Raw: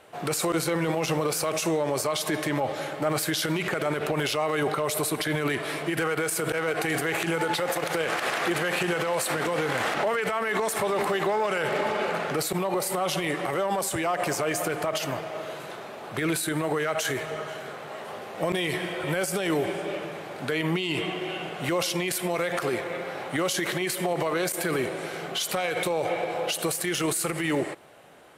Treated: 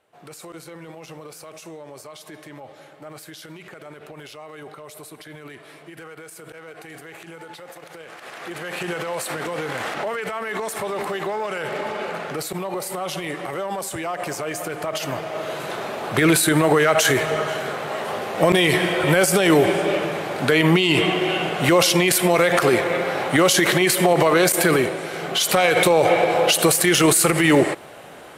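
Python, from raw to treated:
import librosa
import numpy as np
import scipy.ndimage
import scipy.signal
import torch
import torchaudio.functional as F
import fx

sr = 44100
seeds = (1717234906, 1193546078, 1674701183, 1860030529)

y = fx.gain(x, sr, db=fx.line((8.15, -13.5), (8.88, -1.0), (14.68, -1.0), (15.84, 10.5), (24.68, 10.5), (25.04, 3.5), (25.62, 11.0)))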